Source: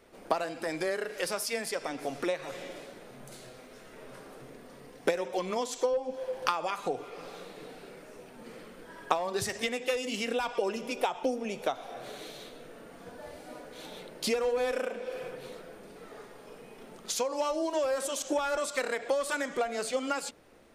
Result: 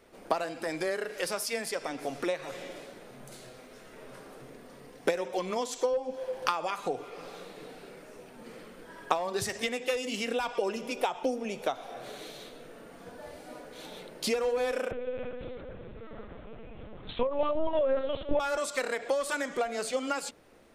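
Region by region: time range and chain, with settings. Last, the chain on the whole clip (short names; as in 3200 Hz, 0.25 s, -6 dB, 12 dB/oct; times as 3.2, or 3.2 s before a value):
14.91–18.4 echo with dull and thin repeats by turns 0.158 s, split 1700 Hz, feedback 54%, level -11.5 dB + LPC vocoder at 8 kHz pitch kept + low shelf 410 Hz +6 dB
whole clip: dry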